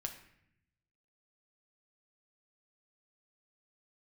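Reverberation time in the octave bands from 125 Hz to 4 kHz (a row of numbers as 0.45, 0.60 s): 1.4, 1.1, 0.75, 0.70, 0.85, 0.60 s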